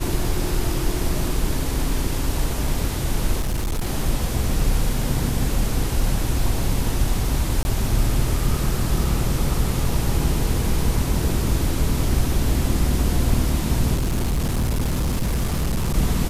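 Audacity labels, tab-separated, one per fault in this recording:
3.400000	3.860000	clipping −19.5 dBFS
7.630000	7.650000	drop-out 20 ms
13.940000	15.960000	clipping −18 dBFS

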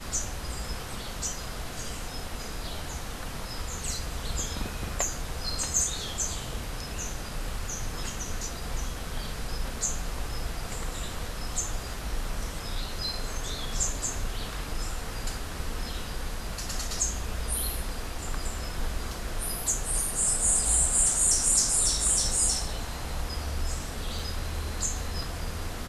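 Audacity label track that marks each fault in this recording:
24.190000	24.190000	drop-out 3 ms

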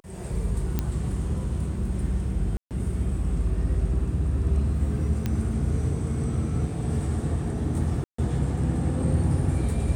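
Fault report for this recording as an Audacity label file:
0.790000	0.790000	click −12 dBFS
2.570000	2.710000	drop-out 138 ms
5.260000	5.260000	click −14 dBFS
8.040000	8.180000	drop-out 144 ms

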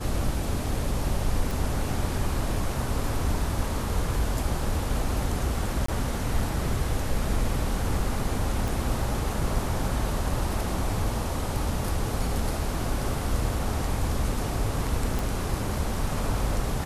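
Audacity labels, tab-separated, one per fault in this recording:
1.510000	1.510000	click
5.860000	5.880000	drop-out 24 ms
8.680000	8.680000	click
15.190000	15.190000	click

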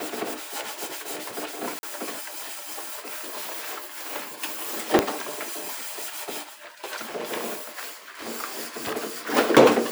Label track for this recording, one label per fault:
1.790000	1.830000	drop-out 41 ms
4.990000	4.990000	click −2 dBFS

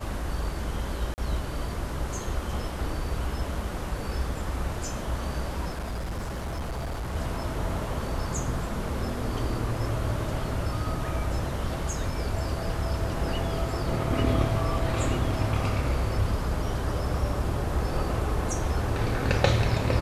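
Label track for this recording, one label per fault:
1.140000	1.180000	drop-out 39 ms
5.700000	7.160000	clipping −28.5 dBFS

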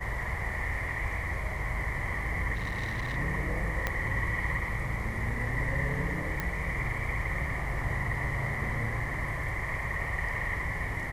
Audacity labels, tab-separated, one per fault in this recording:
2.550000	3.170000	clipping −29 dBFS
3.870000	3.870000	click −14 dBFS
6.400000	6.400000	click −17 dBFS

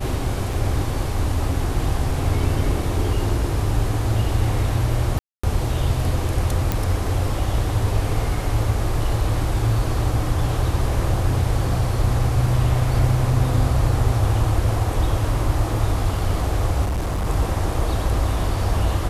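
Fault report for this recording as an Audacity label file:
0.530000	0.530000	drop-out 3 ms
5.190000	5.430000	drop-out 245 ms
6.720000	6.720000	click
16.840000	17.270000	clipping −19.5 dBFS

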